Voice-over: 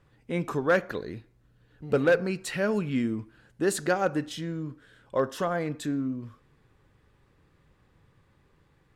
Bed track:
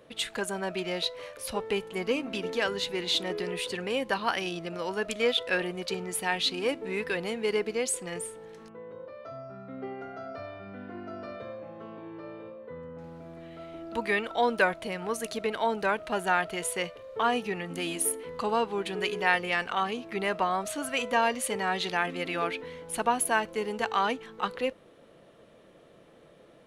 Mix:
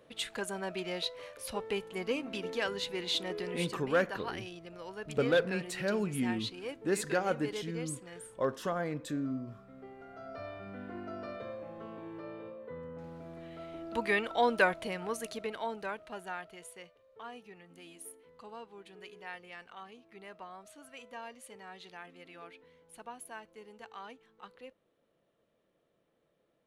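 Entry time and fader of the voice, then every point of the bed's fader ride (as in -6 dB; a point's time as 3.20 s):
3.25 s, -5.5 dB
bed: 3.61 s -5 dB
3.82 s -12 dB
9.96 s -12 dB
10.47 s -2 dB
14.81 s -2 dB
16.93 s -20 dB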